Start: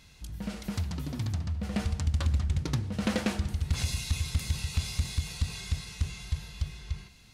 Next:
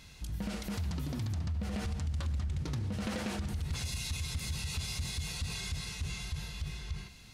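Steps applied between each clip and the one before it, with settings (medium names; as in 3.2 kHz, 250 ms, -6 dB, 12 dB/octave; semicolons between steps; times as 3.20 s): peak limiter -31 dBFS, peak gain reduction 12 dB; trim +2.5 dB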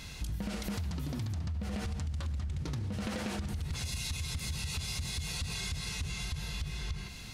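compression 6:1, threshold -42 dBFS, peak gain reduction 11 dB; trim +8.5 dB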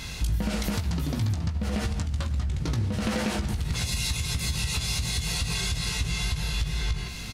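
doubling 18 ms -7 dB; trim +8 dB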